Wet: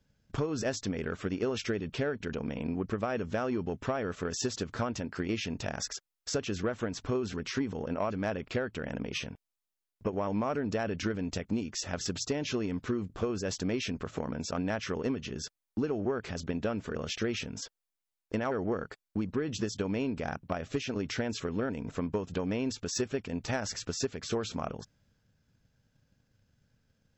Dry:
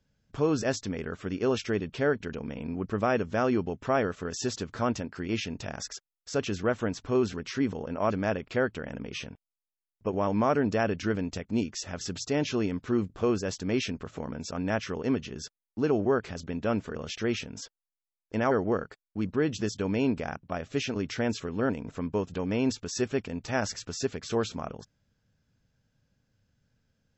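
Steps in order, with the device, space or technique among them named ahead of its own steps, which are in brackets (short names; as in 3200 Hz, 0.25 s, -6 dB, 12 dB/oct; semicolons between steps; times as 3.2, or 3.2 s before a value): drum-bus smash (transient shaper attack +7 dB, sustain +3 dB; compressor 10:1, threshold -26 dBFS, peak gain reduction 11.5 dB; soft clip -19.5 dBFS, distortion -19 dB)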